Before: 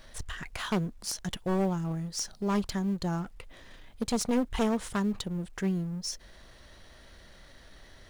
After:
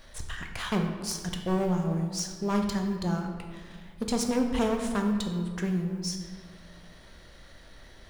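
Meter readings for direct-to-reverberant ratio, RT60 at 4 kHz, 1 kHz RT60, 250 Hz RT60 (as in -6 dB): 3.0 dB, 0.95 s, 1.6 s, 1.9 s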